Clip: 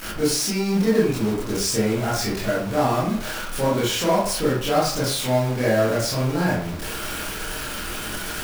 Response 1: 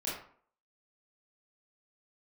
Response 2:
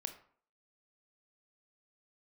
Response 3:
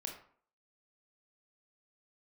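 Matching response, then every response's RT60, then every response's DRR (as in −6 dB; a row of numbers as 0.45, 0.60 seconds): 1; 0.55, 0.55, 0.55 seconds; −8.0, 7.0, 1.0 decibels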